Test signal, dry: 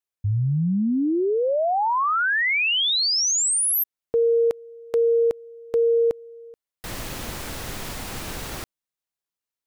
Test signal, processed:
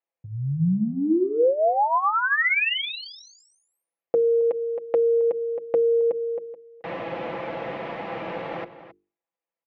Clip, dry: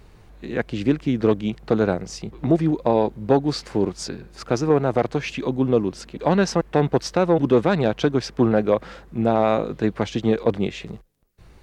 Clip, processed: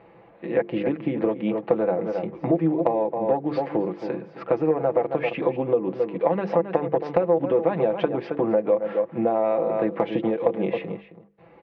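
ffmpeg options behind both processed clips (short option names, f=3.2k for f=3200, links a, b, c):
-filter_complex "[0:a]highpass=200,equalizer=f=530:t=q:w=4:g=8,equalizer=f=790:t=q:w=4:g=5,equalizer=f=1.5k:t=q:w=4:g=-6,lowpass=f=2.4k:w=0.5412,lowpass=f=2.4k:w=1.3066,asplit=2[a][b];[b]adelay=268.2,volume=-13dB,highshelf=f=4k:g=-6.04[c];[a][c]amix=inputs=2:normalize=0,acompressor=threshold=-23dB:ratio=6:attack=26:release=139:knee=1:detection=rms,bandreject=f=50:t=h:w=6,bandreject=f=100:t=h:w=6,bandreject=f=150:t=h:w=6,bandreject=f=200:t=h:w=6,bandreject=f=250:t=h:w=6,bandreject=f=300:t=h:w=6,bandreject=f=350:t=h:w=6,bandreject=f=400:t=h:w=6,bandreject=f=450:t=h:w=6,aecho=1:1:6:0.57,volume=2dB"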